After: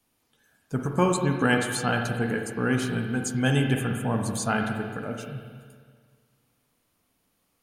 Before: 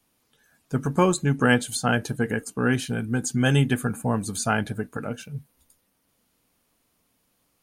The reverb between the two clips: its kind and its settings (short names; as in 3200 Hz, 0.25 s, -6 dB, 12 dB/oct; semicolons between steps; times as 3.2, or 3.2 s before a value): spring tank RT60 1.8 s, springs 39/51/60 ms, chirp 50 ms, DRR 3 dB; gain -3 dB